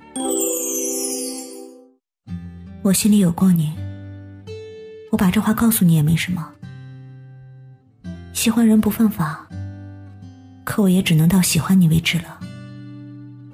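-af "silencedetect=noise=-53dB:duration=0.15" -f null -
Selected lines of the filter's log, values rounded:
silence_start: 1.95
silence_end: 2.27 | silence_duration: 0.32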